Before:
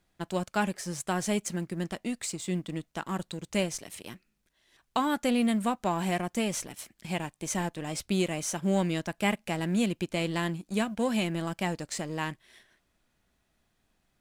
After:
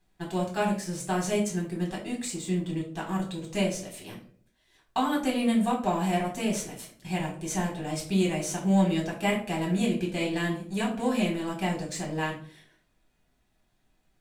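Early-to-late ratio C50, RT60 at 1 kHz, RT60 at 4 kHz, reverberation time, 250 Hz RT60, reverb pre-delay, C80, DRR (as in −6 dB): 7.5 dB, 0.45 s, 0.30 s, 0.55 s, 0.65 s, 5 ms, 12.0 dB, −3.0 dB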